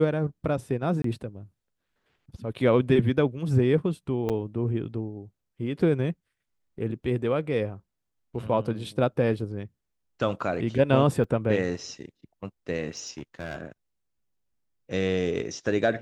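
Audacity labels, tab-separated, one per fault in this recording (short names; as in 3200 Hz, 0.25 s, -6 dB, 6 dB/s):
1.020000	1.040000	gap 23 ms
4.290000	4.300000	gap 7.6 ms
11.240000	11.240000	gap 3.3 ms
12.970000	13.610000	clipped -29.5 dBFS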